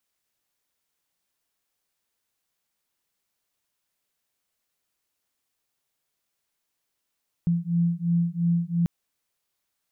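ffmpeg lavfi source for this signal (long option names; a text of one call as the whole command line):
ffmpeg -f lavfi -i "aevalsrc='0.0631*(sin(2*PI*169*t)+sin(2*PI*171.9*t))':duration=1.39:sample_rate=44100" out.wav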